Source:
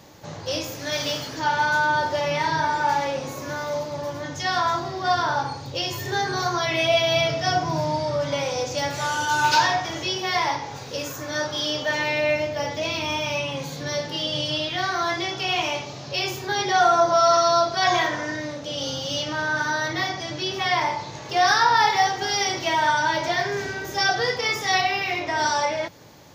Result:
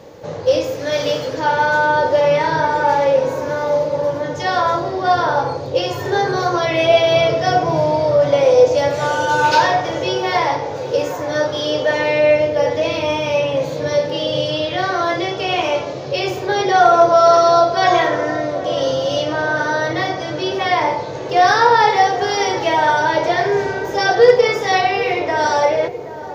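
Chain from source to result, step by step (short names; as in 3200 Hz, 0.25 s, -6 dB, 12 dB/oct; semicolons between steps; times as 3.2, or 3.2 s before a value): bell 490 Hz +14.5 dB 0.51 oct; hard clip -6.5 dBFS, distortion -35 dB; high shelf 4800 Hz -10 dB; on a send: darkening echo 0.776 s, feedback 76%, low-pass 870 Hz, level -12 dB; on the sum: gain +4.5 dB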